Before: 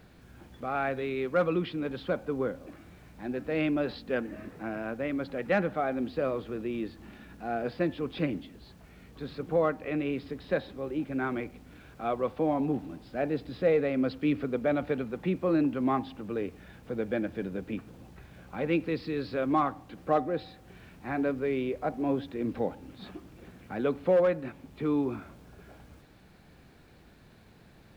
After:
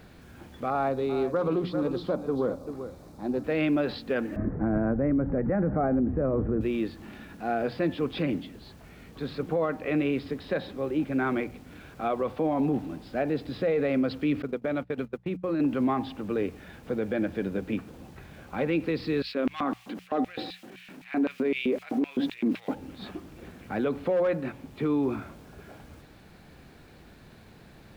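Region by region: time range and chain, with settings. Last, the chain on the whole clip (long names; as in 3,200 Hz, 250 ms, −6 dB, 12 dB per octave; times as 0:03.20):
0:00.70–0:03.44: flat-topped bell 2,200 Hz −12 dB 1.3 octaves + single-tap delay 391 ms −12 dB + highs frequency-modulated by the lows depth 0.15 ms
0:04.36–0:06.61: Butterworth low-pass 2,000 Hz + spectral tilt −4.5 dB per octave
0:14.42–0:15.60: parametric band 730 Hz −4.5 dB 0.4 octaves + downward compressor 16 to 1, threshold −29 dBFS + noise gate −36 dBFS, range −30 dB
0:19.22–0:22.74: transient designer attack −11 dB, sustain +4 dB + auto-filter high-pass square 3.9 Hz 240–2,600 Hz
whole clip: mains-hum notches 60/120/180 Hz; brickwall limiter −23.5 dBFS; level +5 dB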